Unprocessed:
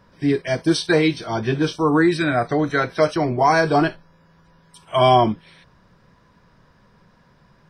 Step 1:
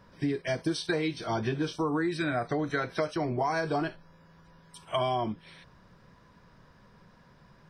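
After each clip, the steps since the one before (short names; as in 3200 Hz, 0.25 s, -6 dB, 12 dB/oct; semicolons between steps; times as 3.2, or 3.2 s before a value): compressor 6:1, threshold -24 dBFS, peak gain reduction 13.5 dB; gain -2.5 dB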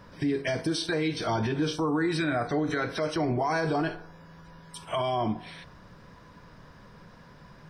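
FDN reverb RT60 0.67 s, low-frequency decay 0.7×, high-frequency decay 0.5×, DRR 12 dB; limiter -26 dBFS, peak gain reduction 10 dB; gain +6.5 dB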